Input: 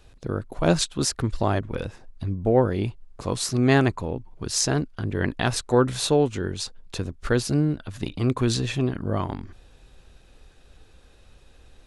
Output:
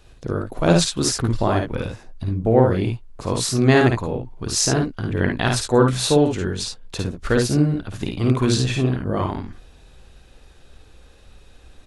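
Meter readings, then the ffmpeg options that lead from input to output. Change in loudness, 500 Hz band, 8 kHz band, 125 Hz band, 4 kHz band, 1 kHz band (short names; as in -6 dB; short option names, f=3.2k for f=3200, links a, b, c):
+4.5 dB, +4.0 dB, +4.5 dB, +4.5 dB, +4.5 dB, +4.0 dB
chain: -af "aecho=1:1:54|71:0.631|0.376,volume=2.5dB"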